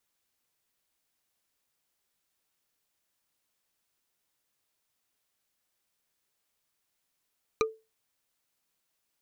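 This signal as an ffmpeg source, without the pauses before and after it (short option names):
-f lavfi -i "aevalsrc='0.1*pow(10,-3*t/0.26)*sin(2*PI*442*t)+0.0794*pow(10,-3*t/0.077)*sin(2*PI*1218.6*t)+0.0631*pow(10,-3*t/0.034)*sin(2*PI*2388.6*t)+0.0501*pow(10,-3*t/0.019)*sin(2*PI*3948.4*t)+0.0398*pow(10,-3*t/0.012)*sin(2*PI*5896.3*t)':d=0.45:s=44100"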